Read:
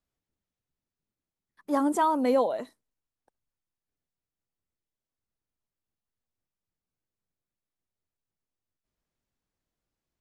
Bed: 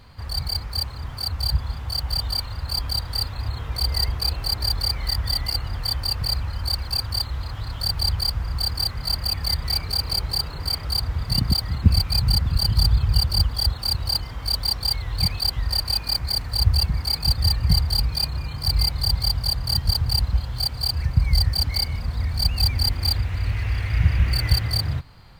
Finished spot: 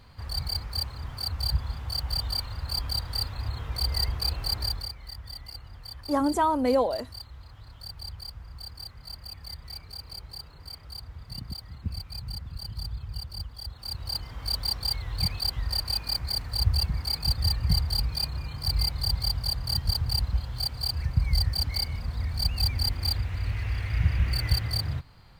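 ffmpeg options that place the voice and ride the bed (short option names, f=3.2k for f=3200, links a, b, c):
-filter_complex "[0:a]adelay=4400,volume=0.5dB[a];[1:a]volume=7dB,afade=t=out:st=4.59:d=0.35:silence=0.237137,afade=t=in:st=13.68:d=0.77:silence=0.266073[b];[a][b]amix=inputs=2:normalize=0"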